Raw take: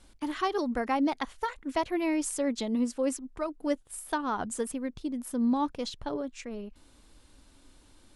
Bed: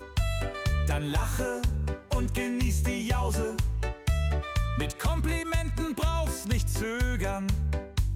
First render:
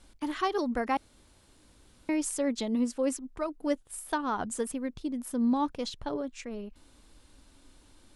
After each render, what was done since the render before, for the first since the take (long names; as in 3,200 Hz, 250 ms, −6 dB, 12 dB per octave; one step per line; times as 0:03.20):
0:00.97–0:02.09: fill with room tone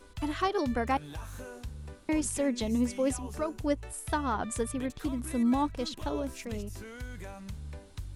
mix in bed −13.5 dB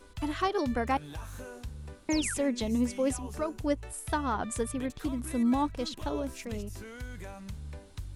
0:02.10–0:02.34: sound drawn into the spectrogram fall 1,300–7,500 Hz −38 dBFS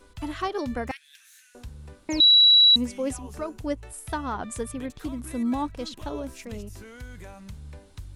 0:00.91–0:01.55: elliptic high-pass filter 1,800 Hz, stop band 60 dB
0:02.20–0:02.76: beep over 3,910 Hz −12 dBFS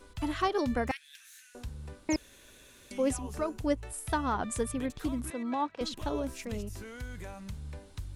0:02.16–0:02.91: fill with room tone
0:05.30–0:05.81: band-pass filter 400–3,700 Hz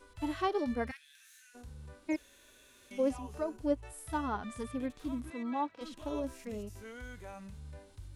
low-shelf EQ 220 Hz −5.5 dB
harmonic and percussive parts rebalanced percussive −18 dB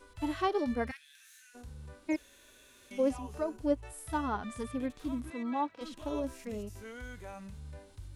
level +1.5 dB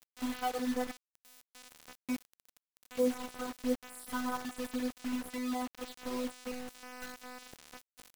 phases set to zero 250 Hz
bit reduction 7 bits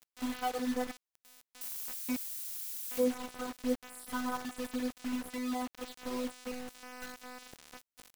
0:01.61–0:03.04: spike at every zero crossing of −32 dBFS